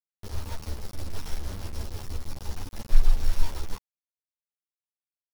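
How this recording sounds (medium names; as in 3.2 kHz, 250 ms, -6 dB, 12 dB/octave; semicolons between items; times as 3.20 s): a buzz of ramps at a fixed pitch in blocks of 8 samples; tremolo triangle 6.2 Hz, depth 65%; a quantiser's noise floor 6-bit, dither none; a shimmering, thickened sound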